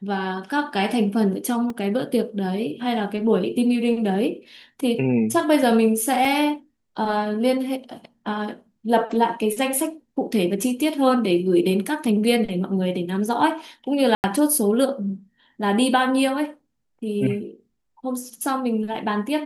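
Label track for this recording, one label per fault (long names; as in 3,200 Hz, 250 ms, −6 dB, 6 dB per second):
1.700000	1.700000	drop-out 2.1 ms
6.250000	6.250000	drop-out 2.6 ms
14.150000	14.240000	drop-out 89 ms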